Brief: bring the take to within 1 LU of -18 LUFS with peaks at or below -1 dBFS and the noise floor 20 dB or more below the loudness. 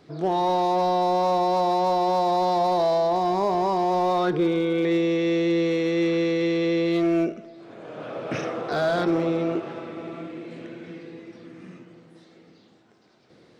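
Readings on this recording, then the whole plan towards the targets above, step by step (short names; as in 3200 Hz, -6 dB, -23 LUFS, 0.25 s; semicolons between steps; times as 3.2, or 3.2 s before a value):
clipped 1.8%; flat tops at -16.5 dBFS; loudness -23.0 LUFS; peak -16.5 dBFS; loudness target -18.0 LUFS
-> clip repair -16.5 dBFS; gain +5 dB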